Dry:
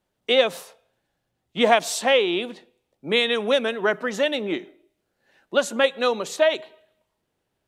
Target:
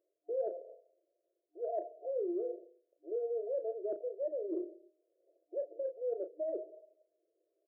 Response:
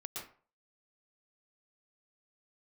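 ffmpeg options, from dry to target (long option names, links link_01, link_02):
-filter_complex "[0:a]afftfilt=real='re*between(b*sr/4096,310,710)':imag='im*between(b*sr/4096,310,710)':win_size=4096:overlap=0.75,alimiter=limit=-15.5dB:level=0:latency=1:release=359,areverse,acompressor=threshold=-36dB:ratio=5,areverse,asplit=2[link_01][link_02];[link_02]adelay=34,volume=-8.5dB[link_03];[link_01][link_03]amix=inputs=2:normalize=0"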